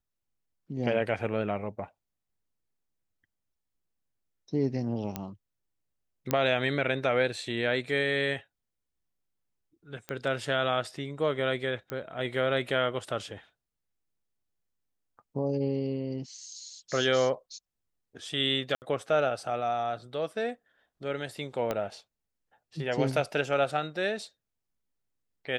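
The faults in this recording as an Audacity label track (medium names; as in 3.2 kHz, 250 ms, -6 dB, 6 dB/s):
5.160000	5.160000	pop -17 dBFS
6.310000	6.310000	pop -11 dBFS
10.090000	10.090000	pop -20 dBFS
11.900000	11.900000	pop -21 dBFS
18.750000	18.820000	dropout 69 ms
21.710000	21.710000	pop -16 dBFS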